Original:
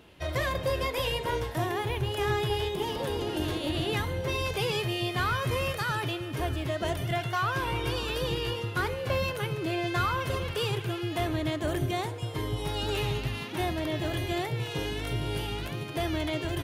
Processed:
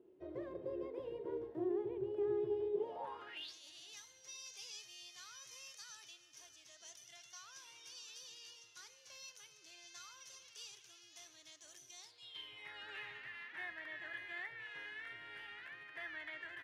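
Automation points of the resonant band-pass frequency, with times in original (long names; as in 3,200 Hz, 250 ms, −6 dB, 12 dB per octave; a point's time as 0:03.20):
resonant band-pass, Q 6.9
0:02.71 370 Hz
0:03.27 1,500 Hz
0:03.54 6,000 Hz
0:11.98 6,000 Hz
0:12.73 1,800 Hz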